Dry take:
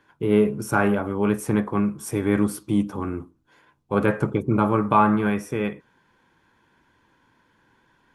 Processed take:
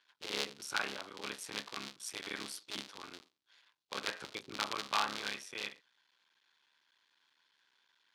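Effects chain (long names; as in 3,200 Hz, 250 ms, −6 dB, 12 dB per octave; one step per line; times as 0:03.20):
sub-harmonics by changed cycles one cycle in 3, muted
resonant band-pass 4,100 Hz, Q 2.1
level +3.5 dB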